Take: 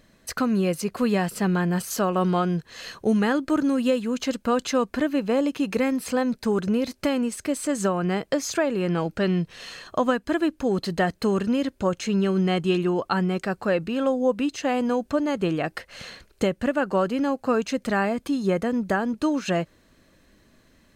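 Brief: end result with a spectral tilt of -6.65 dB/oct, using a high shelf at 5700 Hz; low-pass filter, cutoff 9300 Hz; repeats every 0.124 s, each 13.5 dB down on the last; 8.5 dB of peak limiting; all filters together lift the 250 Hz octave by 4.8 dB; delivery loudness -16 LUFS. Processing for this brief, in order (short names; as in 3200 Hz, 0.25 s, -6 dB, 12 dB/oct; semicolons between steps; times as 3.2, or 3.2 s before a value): LPF 9300 Hz; bell 250 Hz +6 dB; high shelf 5700 Hz -7 dB; limiter -15.5 dBFS; feedback echo 0.124 s, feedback 21%, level -13.5 dB; gain +8.5 dB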